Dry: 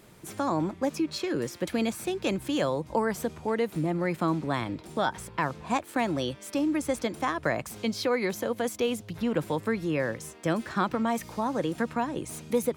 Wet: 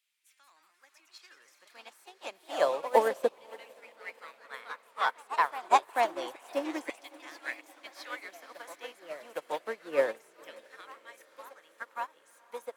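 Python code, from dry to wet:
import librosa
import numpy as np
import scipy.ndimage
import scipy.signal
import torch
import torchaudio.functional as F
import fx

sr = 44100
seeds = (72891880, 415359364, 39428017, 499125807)

y = fx.filter_lfo_highpass(x, sr, shape='saw_down', hz=0.29, low_hz=400.0, high_hz=2800.0, q=1.9)
y = fx.echo_pitch(y, sr, ms=212, semitones=2, count=3, db_per_echo=-6.0)
y = fx.echo_diffused(y, sr, ms=534, feedback_pct=68, wet_db=-10.0)
y = fx.upward_expand(y, sr, threshold_db=-36.0, expansion=2.5)
y = F.gain(torch.from_numpy(y), 3.0).numpy()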